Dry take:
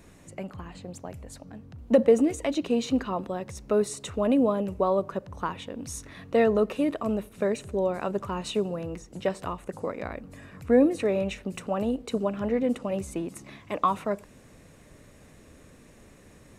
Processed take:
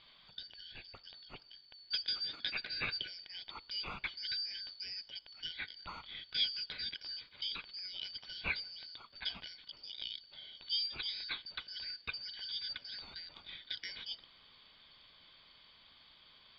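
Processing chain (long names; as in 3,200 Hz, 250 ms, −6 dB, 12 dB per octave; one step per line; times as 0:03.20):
band-splitting scrambler in four parts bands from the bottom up 4321
Chebyshev low-pass filter 3,700 Hz, order 5
low-shelf EQ 110 Hz +9 dB
level +2.5 dB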